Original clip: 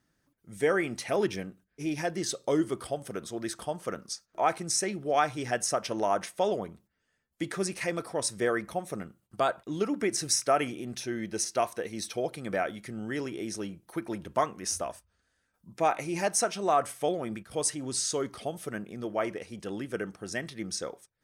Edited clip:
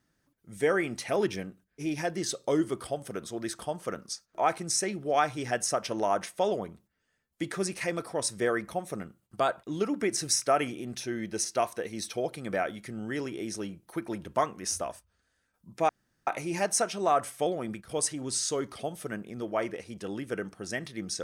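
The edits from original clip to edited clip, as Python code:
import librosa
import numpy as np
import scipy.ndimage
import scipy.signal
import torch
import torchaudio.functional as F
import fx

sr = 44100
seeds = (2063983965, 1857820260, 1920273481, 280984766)

y = fx.edit(x, sr, fx.insert_room_tone(at_s=15.89, length_s=0.38), tone=tone)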